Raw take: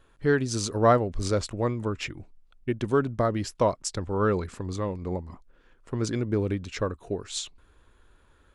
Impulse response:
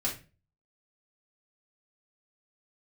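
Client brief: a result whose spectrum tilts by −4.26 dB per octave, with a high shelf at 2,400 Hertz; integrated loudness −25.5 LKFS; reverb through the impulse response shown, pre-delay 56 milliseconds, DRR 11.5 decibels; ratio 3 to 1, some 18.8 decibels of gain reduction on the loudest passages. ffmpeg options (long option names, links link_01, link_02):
-filter_complex "[0:a]highshelf=frequency=2400:gain=7.5,acompressor=threshold=-40dB:ratio=3,asplit=2[link_01][link_02];[1:a]atrim=start_sample=2205,adelay=56[link_03];[link_02][link_03]afir=irnorm=-1:irlink=0,volume=-16.5dB[link_04];[link_01][link_04]amix=inputs=2:normalize=0,volume=14dB"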